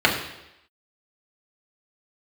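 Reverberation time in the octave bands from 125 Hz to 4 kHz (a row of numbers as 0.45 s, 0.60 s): 0.75 s, 0.85 s, 0.90 s, 0.85 s, 0.90 s, 0.90 s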